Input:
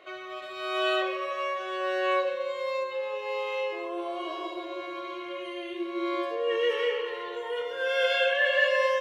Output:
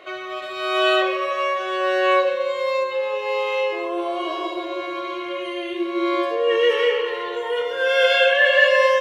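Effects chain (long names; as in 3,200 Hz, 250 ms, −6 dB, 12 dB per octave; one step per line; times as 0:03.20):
downsampling to 32,000 Hz
level +8.5 dB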